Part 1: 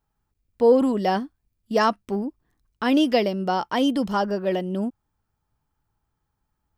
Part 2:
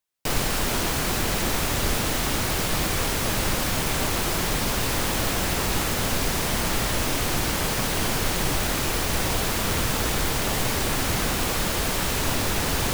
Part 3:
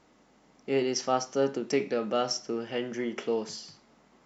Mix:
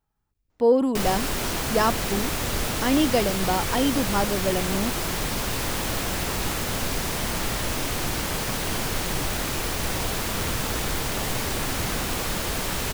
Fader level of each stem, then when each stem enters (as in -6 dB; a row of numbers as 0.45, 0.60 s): -2.0, -2.5, -15.0 dB; 0.00, 0.70, 0.50 s